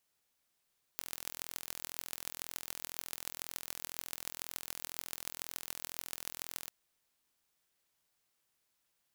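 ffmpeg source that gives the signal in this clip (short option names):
-f lavfi -i "aevalsrc='0.316*eq(mod(n,1050),0)*(0.5+0.5*eq(mod(n,6300),0))':d=5.71:s=44100"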